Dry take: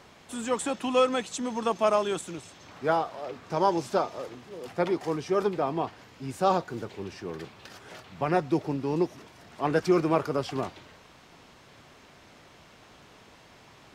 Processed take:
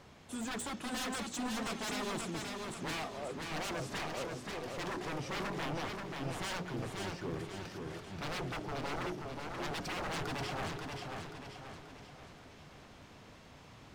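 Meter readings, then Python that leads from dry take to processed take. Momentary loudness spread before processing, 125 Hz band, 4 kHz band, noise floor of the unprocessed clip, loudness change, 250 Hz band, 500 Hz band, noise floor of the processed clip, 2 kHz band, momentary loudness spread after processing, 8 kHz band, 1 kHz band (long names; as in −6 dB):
16 LU, −6.0 dB, −1.5 dB, −55 dBFS, −11.0 dB, −10.0 dB, −14.5 dB, −56 dBFS, −2.0 dB, 16 LU, −2.5 dB, −11.0 dB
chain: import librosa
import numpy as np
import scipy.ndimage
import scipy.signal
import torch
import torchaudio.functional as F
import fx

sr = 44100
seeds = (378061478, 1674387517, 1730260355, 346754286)

p1 = fx.low_shelf(x, sr, hz=250.0, db=9.0)
p2 = fx.hum_notches(p1, sr, base_hz=60, count=7)
p3 = 10.0 ** (-28.0 / 20.0) * (np.abs((p2 / 10.0 ** (-28.0 / 20.0) + 3.0) % 4.0 - 2.0) - 1.0)
p4 = p3 + fx.echo_single(p3, sr, ms=677, db=-21.0, dry=0)
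p5 = fx.echo_warbled(p4, sr, ms=533, feedback_pct=48, rate_hz=2.8, cents=51, wet_db=-4)
y = F.gain(torch.from_numpy(p5), -6.0).numpy()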